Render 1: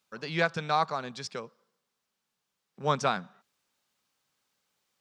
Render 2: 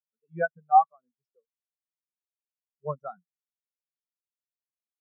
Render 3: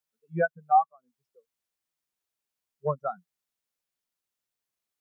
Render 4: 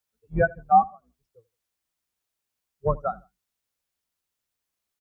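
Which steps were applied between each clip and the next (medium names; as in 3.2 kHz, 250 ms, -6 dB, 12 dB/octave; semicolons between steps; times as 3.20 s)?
spectral contrast expander 4:1; trim +3 dB
compression 2:1, threshold -34 dBFS, peak gain reduction 12 dB; trim +8 dB
octave divider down 2 oct, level 0 dB; feedback delay 80 ms, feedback 27%, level -23 dB; trim +3.5 dB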